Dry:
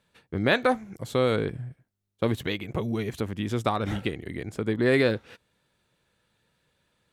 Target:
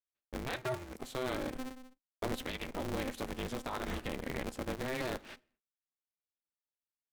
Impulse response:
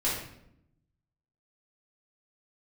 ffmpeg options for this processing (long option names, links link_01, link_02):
-filter_complex "[0:a]agate=range=-39dB:threshold=-45dB:ratio=16:detection=peak,lowshelf=frequency=230:gain=-5.5,areverse,acompressor=threshold=-32dB:ratio=6,areverse,alimiter=level_in=3.5dB:limit=-24dB:level=0:latency=1:release=93,volume=-3.5dB,aphaser=in_gain=1:out_gain=1:delay=3.1:decay=0.22:speed=0.46:type=sinusoidal,asplit=2[link_01][link_02];[1:a]atrim=start_sample=2205,afade=type=out:start_time=0.3:duration=0.01,atrim=end_sample=13671,lowshelf=frequency=190:gain=10[link_03];[link_02][link_03]afir=irnorm=-1:irlink=0,volume=-31.5dB[link_04];[link_01][link_04]amix=inputs=2:normalize=0,aeval=exprs='val(0)*sgn(sin(2*PI*130*n/s))':channel_layout=same"